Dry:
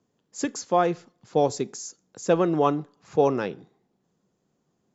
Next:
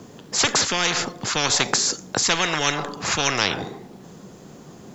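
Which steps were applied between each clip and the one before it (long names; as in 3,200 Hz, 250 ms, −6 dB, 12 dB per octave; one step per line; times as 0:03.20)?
every bin compressed towards the loudest bin 10 to 1
level +6 dB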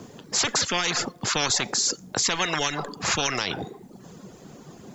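reverb reduction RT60 0.7 s
brickwall limiter −12.5 dBFS, peak gain reduction 10 dB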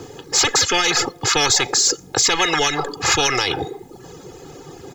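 comb filter 2.4 ms, depth 81%
in parallel at −5.5 dB: soft clipping −20 dBFS, distortion −12 dB
on the sum: level +2.5 dB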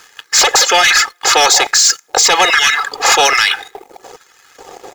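auto-filter high-pass square 1.2 Hz 620–1,600 Hz
leveller curve on the samples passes 2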